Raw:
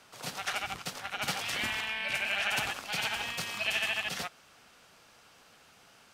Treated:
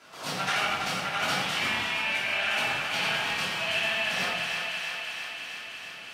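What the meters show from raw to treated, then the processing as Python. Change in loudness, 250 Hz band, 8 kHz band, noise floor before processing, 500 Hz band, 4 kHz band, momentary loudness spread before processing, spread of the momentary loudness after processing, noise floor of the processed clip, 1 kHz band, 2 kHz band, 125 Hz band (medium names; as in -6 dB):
+4.5 dB, +6.5 dB, +2.0 dB, -60 dBFS, +7.0 dB, +5.5 dB, 9 LU, 9 LU, -42 dBFS, +7.0 dB, +5.5 dB, +5.5 dB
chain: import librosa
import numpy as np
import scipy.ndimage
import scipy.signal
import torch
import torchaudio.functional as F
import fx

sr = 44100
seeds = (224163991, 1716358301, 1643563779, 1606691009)

p1 = fx.highpass(x, sr, hz=170.0, slope=6)
p2 = fx.high_shelf(p1, sr, hz=6500.0, db=-7.5)
p3 = p2 + fx.echo_thinned(p2, sr, ms=333, feedback_pct=76, hz=520.0, wet_db=-8.0, dry=0)
p4 = fx.rider(p3, sr, range_db=3, speed_s=0.5)
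p5 = fx.room_shoebox(p4, sr, seeds[0], volume_m3=280.0, walls='mixed', distance_m=3.0)
y = F.gain(torch.from_numpy(p5), -2.5).numpy()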